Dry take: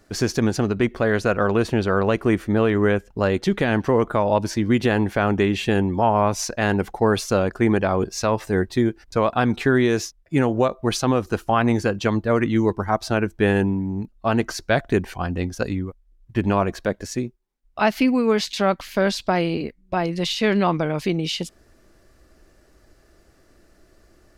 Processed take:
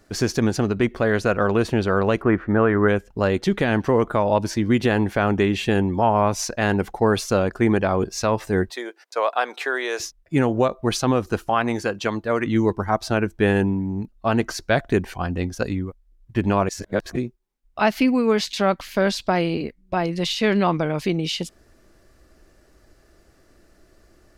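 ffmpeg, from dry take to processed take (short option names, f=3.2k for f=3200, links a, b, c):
-filter_complex "[0:a]asplit=3[a][b][c];[a]afade=t=out:st=2.21:d=0.02[d];[b]lowpass=f=1.5k:t=q:w=2,afade=t=in:st=2.21:d=0.02,afade=t=out:st=2.87:d=0.02[e];[c]afade=t=in:st=2.87:d=0.02[f];[d][e][f]amix=inputs=3:normalize=0,asettb=1/sr,asplit=3[g][h][i];[g]atrim=end=8.704[j];[h]atrim=start=8.7:end=10,asetpts=PTS-STARTPTS,afade=t=in:d=0.004:c=qsin,afade=t=out:st=1.296:d=0.004:c=qsin,highpass=f=490:w=0.5412,highpass=f=490:w=1.3066[k];[i]atrim=start=9.996[l];[j][k]acrossfade=d=0.004:c1=hsin:c2=qsin[m];[m][l]acrossfade=d=0.004:c1=qsin:c2=hsin,asettb=1/sr,asplit=3[n][o][p];[n]atrim=end=11.494[q];[o]atrim=start=11.49:end=12.47,asetpts=PTS-STARTPTS,afade=t=in:d=0.004:c=qsin,afade=t=out:st=0.976:d=0.004:c=qsin,lowshelf=f=240:g=-10.5[r];[p]atrim=start=12.466[s];[q][r]acrossfade=d=0.004:c1=hsin:c2=qsin[t];[t][s]acrossfade=d=0.004:c1=qsin:c2=hsin,asplit=3[u][v][w];[u]atrim=end=16.692[x];[v]atrim=start=16.688:end=17.162,asetpts=PTS-STARTPTS,areverse[y];[w]atrim=start=17.158[z];[x][y]acrossfade=d=0.004:c1=hsin:c2=hsin[aa];[aa][z]acrossfade=d=0.004:c1=hsin:c2=hsin"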